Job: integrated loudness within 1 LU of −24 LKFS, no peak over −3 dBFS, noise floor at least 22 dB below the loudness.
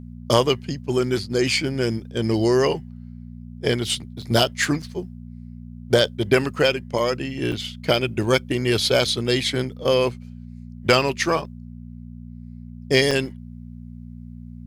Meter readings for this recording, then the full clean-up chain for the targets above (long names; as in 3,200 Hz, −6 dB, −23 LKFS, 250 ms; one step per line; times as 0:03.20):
number of dropouts 4; longest dropout 5.1 ms; mains hum 60 Hz; hum harmonics up to 240 Hz; level of the hum −35 dBFS; integrated loudness −21.5 LKFS; sample peak −3.5 dBFS; target loudness −24.0 LKFS
→ repair the gap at 0:04.22/0:04.82/0:07.52/0:13.11, 5.1 ms
hum removal 60 Hz, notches 4
level −2.5 dB